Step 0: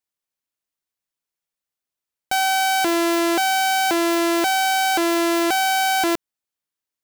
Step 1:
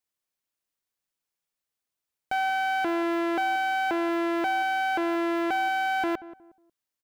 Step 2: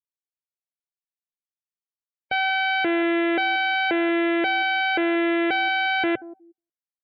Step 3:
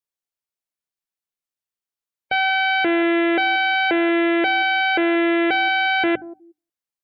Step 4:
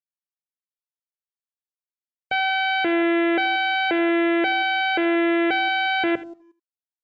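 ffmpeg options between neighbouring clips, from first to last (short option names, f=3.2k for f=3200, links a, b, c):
-filter_complex "[0:a]acrossover=split=2800[a][b];[b]acompressor=threshold=-43dB:ratio=4:attack=1:release=60[c];[a][c]amix=inputs=2:normalize=0,alimiter=limit=-21dB:level=0:latency=1,asplit=2[d][e];[e]adelay=181,lowpass=f=1k:p=1,volume=-15dB,asplit=2[f][g];[g]adelay=181,lowpass=f=1k:p=1,volume=0.32,asplit=2[h][i];[i]adelay=181,lowpass=f=1k:p=1,volume=0.32[j];[d][f][h][j]amix=inputs=4:normalize=0"
-af "afftdn=nr=34:nf=-39,equalizer=f=125:t=o:w=1:g=10,equalizer=f=500:t=o:w=1:g=10,equalizer=f=1k:t=o:w=1:g=-8,equalizer=f=2k:t=o:w=1:g=10,equalizer=f=4k:t=o:w=1:g=10,equalizer=f=8k:t=o:w=1:g=5"
-af "bandreject=f=50:t=h:w=6,bandreject=f=100:t=h:w=6,bandreject=f=150:t=h:w=6,bandreject=f=200:t=h:w=6,bandreject=f=250:t=h:w=6,bandreject=f=300:t=h:w=6,volume=3.5dB"
-af "aresample=16000,aeval=exprs='sgn(val(0))*max(abs(val(0))-0.00158,0)':c=same,aresample=44100,aecho=1:1:80:0.141,volume=-2.5dB"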